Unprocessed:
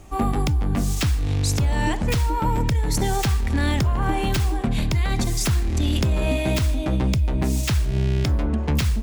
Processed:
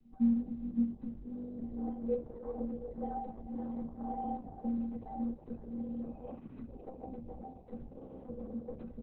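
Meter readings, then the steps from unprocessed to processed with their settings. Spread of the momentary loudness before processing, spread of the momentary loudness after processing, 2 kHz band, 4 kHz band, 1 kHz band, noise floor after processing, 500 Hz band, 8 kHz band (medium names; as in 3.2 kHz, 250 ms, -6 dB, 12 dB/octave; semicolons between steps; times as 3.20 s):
1 LU, 14 LU, under -40 dB, under -40 dB, -16.0 dB, -53 dBFS, -13.0 dB, under -40 dB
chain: comb filter that takes the minimum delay 3.9 ms; spectral selection erased 6.35–6.67 s, 340–940 Hz; treble shelf 11 kHz -5.5 dB; inharmonic resonator 230 Hz, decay 0.35 s, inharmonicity 0.03; low-pass sweep 240 Hz -> 540 Hz, 0.40–2.37 s; delay 515 ms -17 dB; trim -4 dB; Opus 6 kbps 48 kHz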